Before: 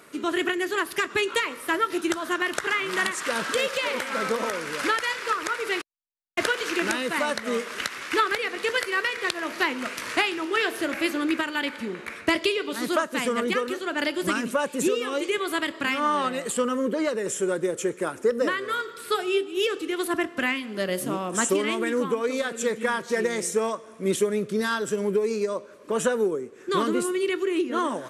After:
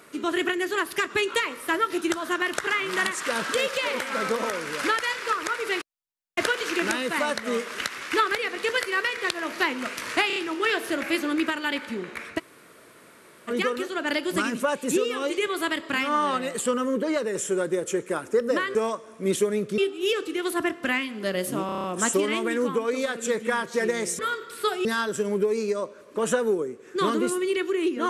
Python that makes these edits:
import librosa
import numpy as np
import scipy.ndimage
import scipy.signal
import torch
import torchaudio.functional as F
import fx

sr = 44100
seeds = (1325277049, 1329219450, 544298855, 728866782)

y = fx.edit(x, sr, fx.stutter(start_s=10.27, slice_s=0.03, count=4),
    fx.room_tone_fill(start_s=12.29, length_s=1.11, crossfade_s=0.04),
    fx.swap(start_s=18.66, length_s=0.66, other_s=23.55, other_length_s=1.03),
    fx.stutter(start_s=21.2, slice_s=0.03, count=7), tone=tone)